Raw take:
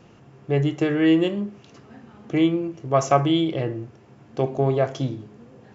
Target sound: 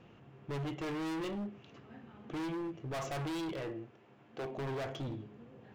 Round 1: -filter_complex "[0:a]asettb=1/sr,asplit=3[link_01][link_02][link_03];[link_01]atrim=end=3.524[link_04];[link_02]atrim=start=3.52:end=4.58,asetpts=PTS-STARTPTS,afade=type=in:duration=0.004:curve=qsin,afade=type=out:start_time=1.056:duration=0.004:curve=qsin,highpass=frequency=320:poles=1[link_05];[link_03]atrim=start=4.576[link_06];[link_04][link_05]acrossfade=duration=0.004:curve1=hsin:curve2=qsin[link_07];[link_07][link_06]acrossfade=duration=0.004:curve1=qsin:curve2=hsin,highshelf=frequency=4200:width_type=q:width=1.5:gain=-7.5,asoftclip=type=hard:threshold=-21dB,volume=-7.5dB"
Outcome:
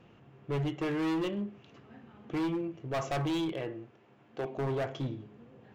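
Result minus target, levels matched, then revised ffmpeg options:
hard clipping: distortion −4 dB
-filter_complex "[0:a]asettb=1/sr,asplit=3[link_01][link_02][link_03];[link_01]atrim=end=3.524[link_04];[link_02]atrim=start=3.52:end=4.58,asetpts=PTS-STARTPTS,afade=type=in:duration=0.004:curve=qsin,afade=type=out:start_time=1.056:duration=0.004:curve=qsin,highpass=frequency=320:poles=1[link_05];[link_03]atrim=start=4.576[link_06];[link_04][link_05]acrossfade=duration=0.004:curve1=hsin:curve2=qsin[link_07];[link_07][link_06]acrossfade=duration=0.004:curve1=qsin:curve2=hsin,highshelf=frequency=4200:width_type=q:width=1.5:gain=-7.5,asoftclip=type=hard:threshold=-28.5dB,volume=-7.5dB"

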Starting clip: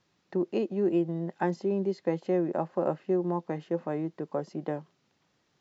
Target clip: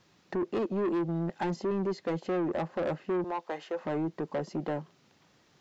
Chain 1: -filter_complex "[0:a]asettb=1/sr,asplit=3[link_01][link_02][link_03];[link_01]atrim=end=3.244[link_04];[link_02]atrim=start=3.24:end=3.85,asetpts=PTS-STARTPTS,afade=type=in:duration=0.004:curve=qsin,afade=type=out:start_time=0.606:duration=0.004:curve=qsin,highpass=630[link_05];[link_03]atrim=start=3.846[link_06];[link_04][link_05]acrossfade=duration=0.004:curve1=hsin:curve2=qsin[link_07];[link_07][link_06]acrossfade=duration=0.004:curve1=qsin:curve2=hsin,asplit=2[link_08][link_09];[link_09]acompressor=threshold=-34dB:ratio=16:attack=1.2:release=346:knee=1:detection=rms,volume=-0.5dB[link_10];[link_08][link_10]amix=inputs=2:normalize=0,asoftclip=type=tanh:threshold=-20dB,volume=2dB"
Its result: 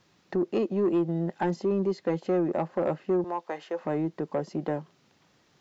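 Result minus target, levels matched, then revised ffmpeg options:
soft clipping: distortion −8 dB
-filter_complex "[0:a]asettb=1/sr,asplit=3[link_01][link_02][link_03];[link_01]atrim=end=3.244[link_04];[link_02]atrim=start=3.24:end=3.85,asetpts=PTS-STARTPTS,afade=type=in:duration=0.004:curve=qsin,afade=type=out:start_time=0.606:duration=0.004:curve=qsin,highpass=630[link_05];[link_03]atrim=start=3.846[link_06];[link_04][link_05]acrossfade=duration=0.004:curve1=hsin:curve2=qsin[link_07];[link_07][link_06]acrossfade=duration=0.004:curve1=qsin:curve2=hsin,asplit=2[link_08][link_09];[link_09]acompressor=threshold=-34dB:ratio=16:attack=1.2:release=346:knee=1:detection=rms,volume=-0.5dB[link_10];[link_08][link_10]amix=inputs=2:normalize=0,asoftclip=type=tanh:threshold=-28dB,volume=2dB"

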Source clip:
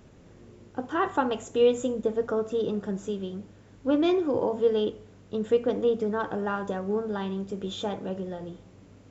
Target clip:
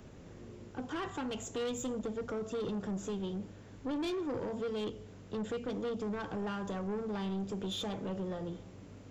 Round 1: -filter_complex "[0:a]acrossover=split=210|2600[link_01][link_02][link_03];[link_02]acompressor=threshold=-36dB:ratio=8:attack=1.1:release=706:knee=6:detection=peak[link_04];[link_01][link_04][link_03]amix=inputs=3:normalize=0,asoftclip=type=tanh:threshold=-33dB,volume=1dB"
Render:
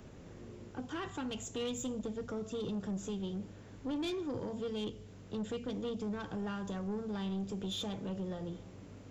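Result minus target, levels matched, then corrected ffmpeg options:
downward compressor: peak gain reduction +5.5 dB
-filter_complex "[0:a]acrossover=split=210|2600[link_01][link_02][link_03];[link_02]acompressor=threshold=-29.5dB:ratio=8:attack=1.1:release=706:knee=6:detection=peak[link_04];[link_01][link_04][link_03]amix=inputs=3:normalize=0,asoftclip=type=tanh:threshold=-33dB,volume=1dB"

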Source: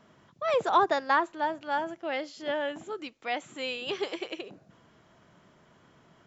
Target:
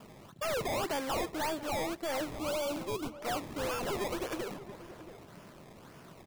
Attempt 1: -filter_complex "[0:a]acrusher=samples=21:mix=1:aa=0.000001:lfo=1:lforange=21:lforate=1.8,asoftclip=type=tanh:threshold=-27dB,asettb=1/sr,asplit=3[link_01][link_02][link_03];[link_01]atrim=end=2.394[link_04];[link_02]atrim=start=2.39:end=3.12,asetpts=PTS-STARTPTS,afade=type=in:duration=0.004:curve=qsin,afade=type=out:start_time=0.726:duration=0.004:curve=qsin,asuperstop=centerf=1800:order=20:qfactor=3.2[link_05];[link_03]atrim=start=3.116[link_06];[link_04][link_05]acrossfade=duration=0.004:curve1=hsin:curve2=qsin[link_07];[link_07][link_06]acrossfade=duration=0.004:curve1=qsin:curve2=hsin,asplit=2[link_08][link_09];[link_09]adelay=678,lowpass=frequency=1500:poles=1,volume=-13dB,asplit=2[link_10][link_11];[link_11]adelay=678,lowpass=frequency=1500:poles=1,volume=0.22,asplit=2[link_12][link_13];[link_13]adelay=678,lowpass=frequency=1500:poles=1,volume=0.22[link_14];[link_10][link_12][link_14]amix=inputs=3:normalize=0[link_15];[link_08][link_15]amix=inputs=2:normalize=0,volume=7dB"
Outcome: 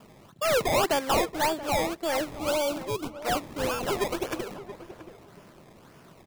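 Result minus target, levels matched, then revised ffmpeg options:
soft clipping: distortion −6 dB
-filter_complex "[0:a]acrusher=samples=21:mix=1:aa=0.000001:lfo=1:lforange=21:lforate=1.8,asoftclip=type=tanh:threshold=-38.5dB,asettb=1/sr,asplit=3[link_01][link_02][link_03];[link_01]atrim=end=2.394[link_04];[link_02]atrim=start=2.39:end=3.12,asetpts=PTS-STARTPTS,afade=type=in:duration=0.004:curve=qsin,afade=type=out:start_time=0.726:duration=0.004:curve=qsin,asuperstop=centerf=1800:order=20:qfactor=3.2[link_05];[link_03]atrim=start=3.116[link_06];[link_04][link_05]acrossfade=duration=0.004:curve1=hsin:curve2=qsin[link_07];[link_07][link_06]acrossfade=duration=0.004:curve1=qsin:curve2=hsin,asplit=2[link_08][link_09];[link_09]adelay=678,lowpass=frequency=1500:poles=1,volume=-13dB,asplit=2[link_10][link_11];[link_11]adelay=678,lowpass=frequency=1500:poles=1,volume=0.22,asplit=2[link_12][link_13];[link_13]adelay=678,lowpass=frequency=1500:poles=1,volume=0.22[link_14];[link_10][link_12][link_14]amix=inputs=3:normalize=0[link_15];[link_08][link_15]amix=inputs=2:normalize=0,volume=7dB"

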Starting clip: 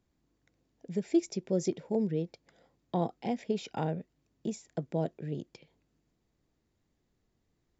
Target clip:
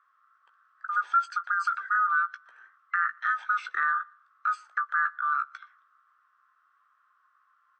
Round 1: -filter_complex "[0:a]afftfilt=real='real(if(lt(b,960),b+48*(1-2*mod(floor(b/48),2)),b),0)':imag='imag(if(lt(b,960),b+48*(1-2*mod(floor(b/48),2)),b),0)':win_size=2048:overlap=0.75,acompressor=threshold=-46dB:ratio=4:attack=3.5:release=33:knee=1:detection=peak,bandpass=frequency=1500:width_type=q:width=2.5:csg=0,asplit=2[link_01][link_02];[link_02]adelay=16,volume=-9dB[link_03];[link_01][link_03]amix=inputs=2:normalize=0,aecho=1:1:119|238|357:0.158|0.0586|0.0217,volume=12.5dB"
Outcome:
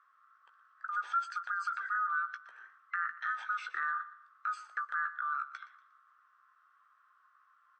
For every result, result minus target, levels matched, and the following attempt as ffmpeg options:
downward compressor: peak gain reduction +8 dB; echo-to-direct +11.5 dB
-filter_complex "[0:a]afftfilt=real='real(if(lt(b,960),b+48*(1-2*mod(floor(b/48),2)),b),0)':imag='imag(if(lt(b,960),b+48*(1-2*mod(floor(b/48),2)),b),0)':win_size=2048:overlap=0.75,acompressor=threshold=-35dB:ratio=4:attack=3.5:release=33:knee=1:detection=peak,bandpass=frequency=1500:width_type=q:width=2.5:csg=0,asplit=2[link_01][link_02];[link_02]adelay=16,volume=-9dB[link_03];[link_01][link_03]amix=inputs=2:normalize=0,aecho=1:1:119|238|357:0.158|0.0586|0.0217,volume=12.5dB"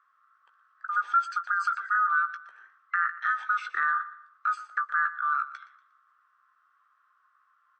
echo-to-direct +11.5 dB
-filter_complex "[0:a]afftfilt=real='real(if(lt(b,960),b+48*(1-2*mod(floor(b/48),2)),b),0)':imag='imag(if(lt(b,960),b+48*(1-2*mod(floor(b/48),2)),b),0)':win_size=2048:overlap=0.75,acompressor=threshold=-35dB:ratio=4:attack=3.5:release=33:knee=1:detection=peak,bandpass=frequency=1500:width_type=q:width=2.5:csg=0,asplit=2[link_01][link_02];[link_02]adelay=16,volume=-9dB[link_03];[link_01][link_03]amix=inputs=2:normalize=0,aecho=1:1:119|238:0.0422|0.0156,volume=12.5dB"

